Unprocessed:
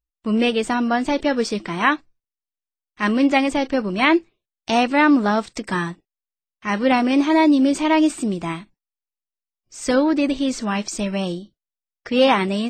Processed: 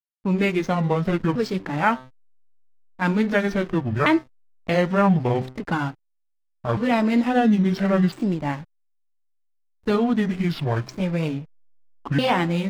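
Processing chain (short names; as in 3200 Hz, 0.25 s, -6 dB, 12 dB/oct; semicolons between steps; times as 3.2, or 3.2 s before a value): repeated pitch sweeps -10 st, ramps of 1.354 s; de-hum 129.2 Hz, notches 17; in parallel at +3 dB: compressor 16:1, threshold -24 dBFS, peak gain reduction 13 dB; on the sum: low-pass opened by the level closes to 960 Hz, open at -10.5 dBFS; backlash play -29 dBFS; gain -4.5 dB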